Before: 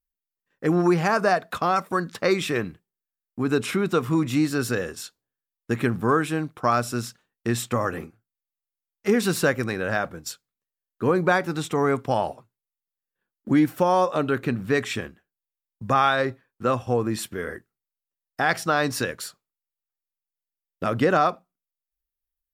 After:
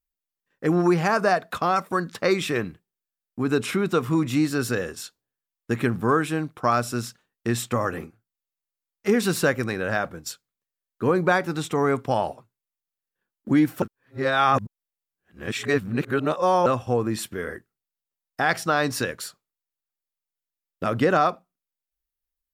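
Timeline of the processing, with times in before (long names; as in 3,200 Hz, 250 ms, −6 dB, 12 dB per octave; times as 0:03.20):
0:13.82–0:16.66: reverse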